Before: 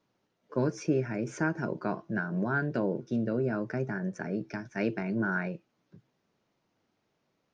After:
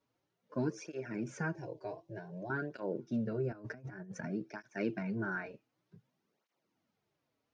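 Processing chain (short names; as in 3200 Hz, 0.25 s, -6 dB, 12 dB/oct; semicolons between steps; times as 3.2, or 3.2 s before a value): 1.55–2.5 fixed phaser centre 550 Hz, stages 4; 3.52–4.28 negative-ratio compressor -38 dBFS, ratio -0.5; tape flanging out of phase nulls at 0.54 Hz, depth 6 ms; gain -3.5 dB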